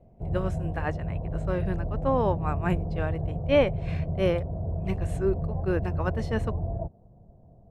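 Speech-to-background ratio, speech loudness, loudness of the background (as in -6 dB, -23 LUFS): 2.0 dB, -30.0 LUFS, -32.0 LUFS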